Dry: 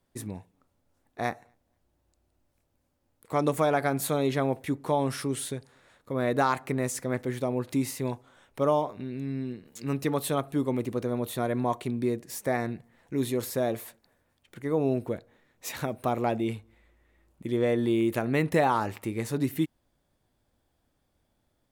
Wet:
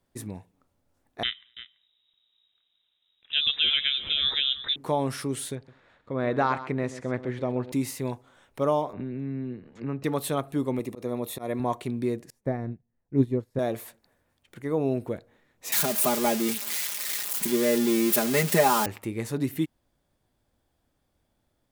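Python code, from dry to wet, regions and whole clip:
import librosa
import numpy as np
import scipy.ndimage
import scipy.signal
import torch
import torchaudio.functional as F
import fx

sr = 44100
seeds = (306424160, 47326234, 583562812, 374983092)

y = fx.chain(x, sr, fx.freq_invert(carrier_hz=3800),
    fx.echo_single(ms=335, db=-14.0), at=(1.23, 4.76))
y = fx.chain(y, sr, fx.lowpass(hz=3600.0, slope=12),
    fx.echo_single(ms=128, db=-13.5), at=(5.55, 7.72))
y = fx.chain(y, sr, fx.lowpass(hz=1900.0, slope=12),
    fx.band_squash(depth_pct=70), at=(8.93, 10.04))
y = fx.chain(y, sr, fx.high_shelf(hz=8200.0, db=4.5),
    fx.notch_comb(f0_hz=1500.0),
    fx.auto_swell(attack_ms=110.0), at=(10.79, 11.6))
y = fx.chain(y, sr, fx.tilt_eq(slope=-4.0),
    fx.upward_expand(threshold_db=-34.0, expansion=2.5), at=(12.3, 13.59))
y = fx.chain(y, sr, fx.crossing_spikes(level_db=-18.0),
    fx.highpass(hz=140.0, slope=24),
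    fx.comb(ms=4.9, depth=0.84), at=(15.72, 18.86))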